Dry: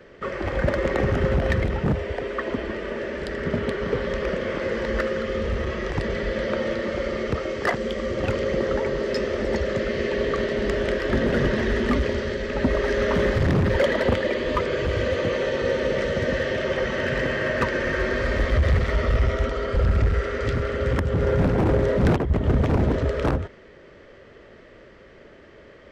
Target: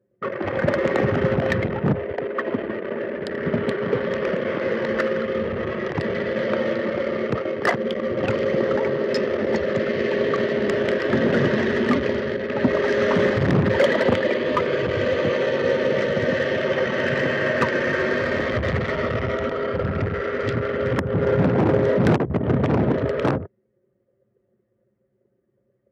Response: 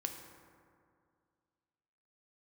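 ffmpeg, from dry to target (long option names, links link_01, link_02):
-af "anlmdn=39.8,highpass=frequency=110:width=0.5412,highpass=frequency=110:width=1.3066,volume=3dB"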